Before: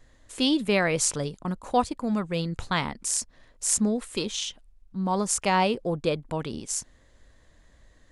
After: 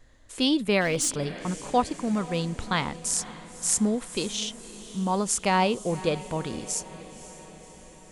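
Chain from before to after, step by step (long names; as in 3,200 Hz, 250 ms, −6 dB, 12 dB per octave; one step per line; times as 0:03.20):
feedback delay with all-pass diffusion 537 ms, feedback 61%, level −16 dB
0:00.81–0:01.59: hard clipping −20 dBFS, distortion −24 dB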